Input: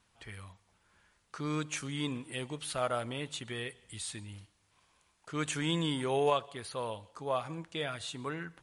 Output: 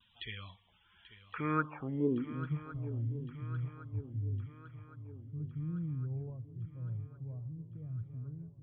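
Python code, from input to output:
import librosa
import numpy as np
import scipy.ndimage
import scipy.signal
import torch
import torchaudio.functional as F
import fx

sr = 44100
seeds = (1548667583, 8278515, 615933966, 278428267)

y = fx.filter_sweep_lowpass(x, sr, from_hz=3300.0, to_hz=110.0, start_s=1.24, end_s=2.63, q=4.2)
y = fx.spec_topn(y, sr, count=64)
y = fx.echo_swing(y, sr, ms=1111, ratio=3, feedback_pct=54, wet_db=-14.5)
y = fx.vibrato(y, sr, rate_hz=0.91, depth_cents=41.0)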